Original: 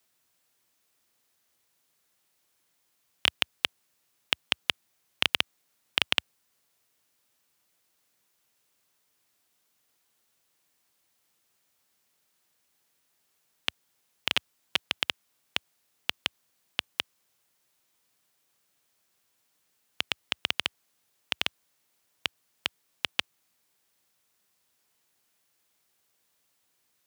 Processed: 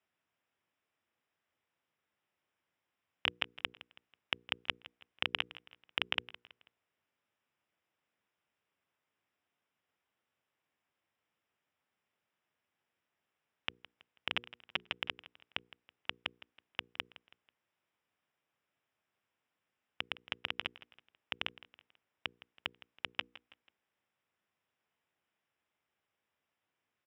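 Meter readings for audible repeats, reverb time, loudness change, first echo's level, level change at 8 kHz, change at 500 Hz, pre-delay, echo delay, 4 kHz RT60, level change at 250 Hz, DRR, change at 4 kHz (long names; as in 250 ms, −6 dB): 3, no reverb audible, −8.5 dB, −18.0 dB, below −20 dB, −6.0 dB, no reverb audible, 163 ms, no reverb audible, −6.5 dB, no reverb audible, −10.0 dB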